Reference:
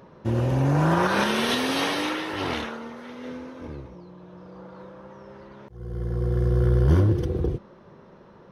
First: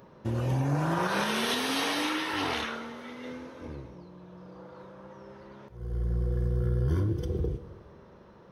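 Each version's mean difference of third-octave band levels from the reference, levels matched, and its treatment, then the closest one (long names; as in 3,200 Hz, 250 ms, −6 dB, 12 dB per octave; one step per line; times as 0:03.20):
3.0 dB: noise reduction from a noise print of the clip's start 6 dB
high-shelf EQ 5,300 Hz +4.5 dB
downward compressor 3 to 1, threshold −30 dBFS, peak gain reduction 12 dB
dense smooth reverb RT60 1.7 s, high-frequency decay 0.95×, DRR 11 dB
level +2 dB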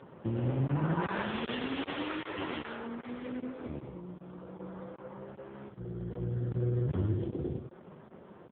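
6.0 dB: downward compressor 2 to 1, threshold −34 dBFS, peak gain reduction 11 dB
on a send: single-tap delay 107 ms −6.5 dB
on the sum: regular buffer underruns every 0.39 s, samples 1,024, zero, from 0:00.67
AMR narrowband 5.15 kbit/s 8,000 Hz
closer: first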